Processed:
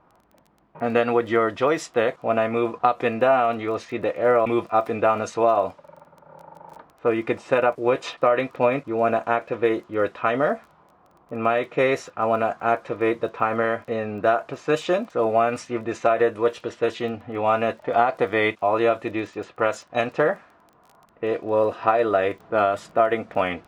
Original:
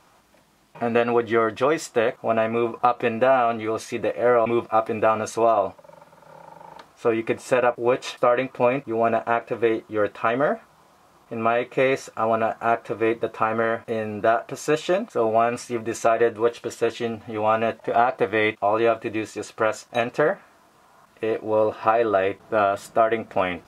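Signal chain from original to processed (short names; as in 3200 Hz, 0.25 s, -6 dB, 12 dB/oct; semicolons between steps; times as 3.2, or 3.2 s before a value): low-pass opened by the level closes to 1200 Hz, open at -17 dBFS; crackle 15/s -38 dBFS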